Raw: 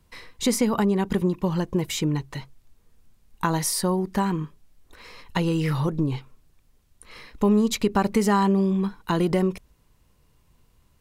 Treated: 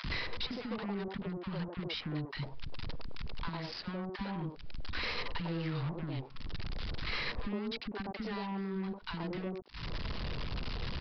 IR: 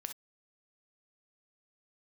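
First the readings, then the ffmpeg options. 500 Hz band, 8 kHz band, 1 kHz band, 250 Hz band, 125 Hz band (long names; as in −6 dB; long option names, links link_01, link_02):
−16.0 dB, below −30 dB, −15.0 dB, −15.5 dB, −12.0 dB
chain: -filter_complex "[0:a]aeval=exprs='val(0)+0.5*0.0335*sgn(val(0))':channel_layout=same,acompressor=threshold=-34dB:ratio=6,aresample=16000,acrusher=bits=5:mix=0:aa=0.5,aresample=44100,asoftclip=type=tanh:threshold=-29.5dB,acrossover=split=300|940[link_01][link_02][link_03];[link_01]adelay=40[link_04];[link_02]adelay=100[link_05];[link_04][link_05][link_03]amix=inputs=3:normalize=0,aresample=11025,aresample=44100,volume=1dB"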